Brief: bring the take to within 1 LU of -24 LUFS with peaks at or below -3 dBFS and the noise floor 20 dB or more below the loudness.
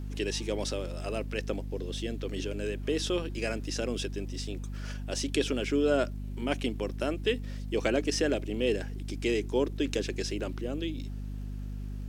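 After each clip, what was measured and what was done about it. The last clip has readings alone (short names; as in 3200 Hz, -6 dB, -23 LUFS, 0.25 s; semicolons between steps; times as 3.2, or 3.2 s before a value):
ticks 50/s; hum 50 Hz; harmonics up to 250 Hz; hum level -34 dBFS; loudness -32.0 LUFS; peak -12.0 dBFS; loudness target -24.0 LUFS
-> de-click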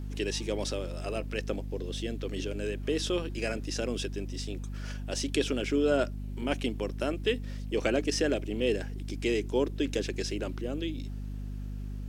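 ticks 0.99/s; hum 50 Hz; harmonics up to 250 Hz; hum level -34 dBFS
-> notches 50/100/150/200/250 Hz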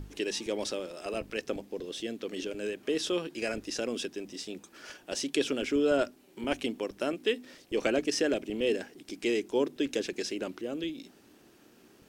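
hum none; loudness -32.5 LUFS; peak -12.0 dBFS; loudness target -24.0 LUFS
-> gain +8.5 dB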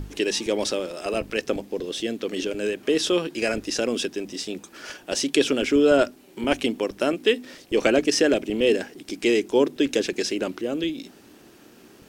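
loudness -24.0 LUFS; peak -3.5 dBFS; noise floor -51 dBFS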